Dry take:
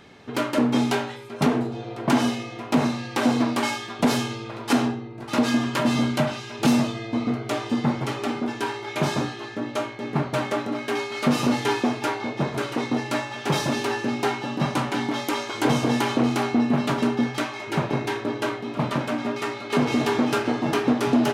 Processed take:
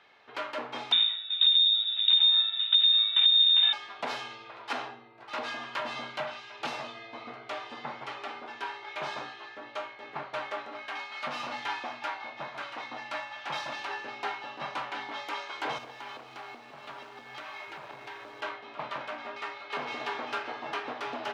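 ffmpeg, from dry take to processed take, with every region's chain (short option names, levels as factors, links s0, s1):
-filter_complex "[0:a]asettb=1/sr,asplit=3[s0][s1][s2];[s0]atrim=end=0.924[s3];[s1]atrim=start=0.92:end=3.73,asetpts=PTS-STARTPTS,afade=t=in:d=0.004:c=qsin,afade=t=out:st=2.806:d=0.004:c=qsin,lowshelf=f=410:t=q:w=3:g=12.5,acompressor=threshold=0.355:ratio=12:attack=3.2:release=140:knee=1:detection=peak,lowpass=f=3300:t=q:w=0.5098,lowpass=f=3300:t=q:w=0.6013,lowpass=f=3300:t=q:w=0.9,lowpass=f=3300:t=q:w=2.563,afreqshift=-3900[s4];[s2]atrim=start=3.726[s5];[s3][s4]acrossfade=d=0.004:c1=hsin:c2=qsin[s6];[s6][s5]acrossfade=d=0.004:c1=qsin:c2=hsin,asettb=1/sr,asplit=3[s7][s8][s9];[s7]atrim=end=10.824[s10];[s8]atrim=start=10.82:end=13.89,asetpts=PTS-STARTPTS,afade=t=in:d=0.004:c=qsin,afade=t=out:st=3.066:d=0.004:c=qsin,highpass=43,equalizer=f=420:t=o:w=0.26:g=-13[s11];[s9]atrim=start=13.886[s12];[s10][s11]acrossfade=d=0.004:c1=hsin:c2=qsin[s13];[s13][s12]acrossfade=d=0.004:c1=qsin:c2=hsin,asettb=1/sr,asplit=3[s14][s15][s16];[s14]atrim=end=15.784[s17];[s15]atrim=start=15.78:end=18.41,asetpts=PTS-STARTPTS,afade=t=in:d=0.004:c=qsin,afade=t=out:st=2.626:d=0.004:c=qsin,acompressor=threshold=0.0398:ratio=8:attack=3.2:release=140:knee=1:detection=peak,acrusher=bits=8:dc=4:mix=0:aa=0.000001,lowshelf=f=89:g=10.5[s18];[s16]atrim=start=18.406[s19];[s17][s18]acrossfade=d=0.004:c1=hsin:c2=qsin[s20];[s20][s19]acrossfade=d=0.004:c1=qsin:c2=hsin,acrossover=split=580 4600:gain=0.0891 1 0.0891[s21][s22][s23];[s21][s22][s23]amix=inputs=3:normalize=0,bandreject=f=60:t=h:w=6,bandreject=f=120:t=h:w=6,bandreject=f=180:t=h:w=6,bandreject=f=240:t=h:w=6,volume=0.501"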